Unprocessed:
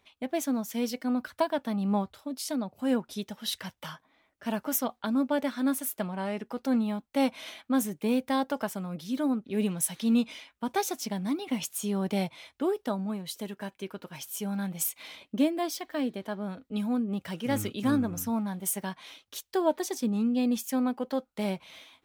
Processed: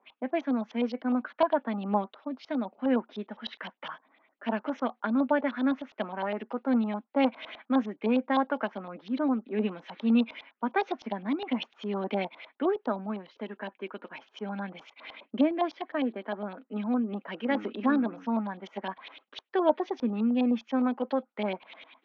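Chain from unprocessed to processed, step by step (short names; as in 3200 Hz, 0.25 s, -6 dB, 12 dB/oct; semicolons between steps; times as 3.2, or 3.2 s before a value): Chebyshev band-pass 220–6400 Hz, order 4; LFO low-pass saw up 9.8 Hz 780–3800 Hz; air absorption 160 m; gain +1 dB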